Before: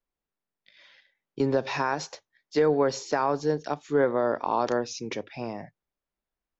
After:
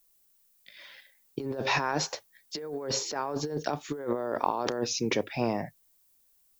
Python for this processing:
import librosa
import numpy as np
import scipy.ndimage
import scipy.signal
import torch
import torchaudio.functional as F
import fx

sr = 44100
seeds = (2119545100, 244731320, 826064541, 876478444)

y = fx.dynamic_eq(x, sr, hz=390.0, q=1.9, threshold_db=-30.0, ratio=4.0, max_db=3)
y = fx.over_compress(y, sr, threshold_db=-31.0, ratio=-1.0)
y = fx.dmg_noise_colour(y, sr, seeds[0], colour='violet', level_db=-66.0)